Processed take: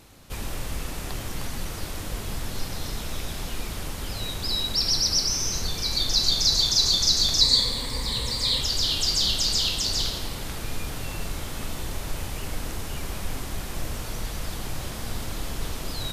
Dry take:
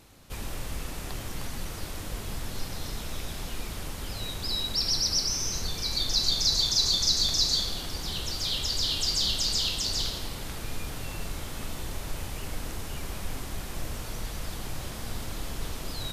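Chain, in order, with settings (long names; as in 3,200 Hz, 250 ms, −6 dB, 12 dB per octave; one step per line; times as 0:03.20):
0:07.41–0:08.61: EQ curve with evenly spaced ripples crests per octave 0.98, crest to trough 11 dB
level +3.5 dB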